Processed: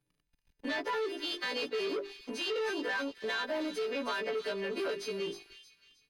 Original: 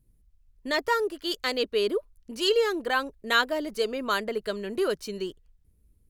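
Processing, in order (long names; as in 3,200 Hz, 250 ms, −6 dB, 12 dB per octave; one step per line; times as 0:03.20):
every partial snapped to a pitch grid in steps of 2 semitones
mains-hum notches 50/100/150/200/250/300/350/400 Hz
comb filter 6.9 ms, depth 68%
brickwall limiter −16.5 dBFS, peak gain reduction 9.5 dB
leveller curve on the samples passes 3
downward compressor 3 to 1, threshold −37 dBFS, peak gain reduction 13 dB
three-way crossover with the lows and the highs turned down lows −16 dB, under 160 Hz, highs −23 dB, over 5,000 Hz
delay with a high-pass on its return 313 ms, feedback 38%, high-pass 2,900 Hz, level −7 dB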